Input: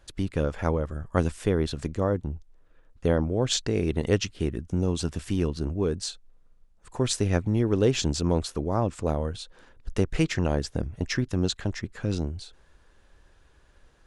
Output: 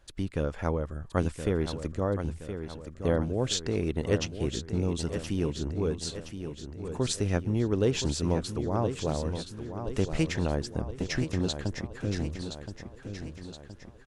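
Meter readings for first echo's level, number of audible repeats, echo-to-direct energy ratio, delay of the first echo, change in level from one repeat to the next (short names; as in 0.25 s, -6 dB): -9.0 dB, 5, -7.5 dB, 1.021 s, -5.5 dB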